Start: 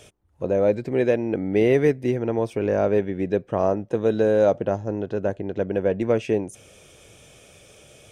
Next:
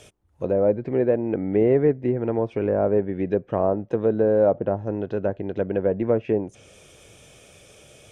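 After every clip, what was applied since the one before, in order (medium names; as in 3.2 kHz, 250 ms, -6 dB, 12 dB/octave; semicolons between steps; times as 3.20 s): low-pass that closes with the level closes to 1.2 kHz, closed at -18 dBFS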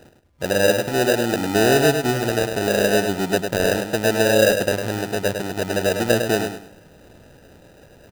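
sample-rate reducer 1.1 kHz, jitter 0%; on a send: feedback delay 103 ms, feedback 29%, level -6.5 dB; on the sum: trim +1.5 dB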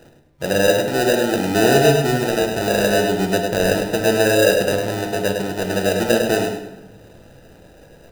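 simulated room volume 330 m³, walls mixed, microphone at 0.7 m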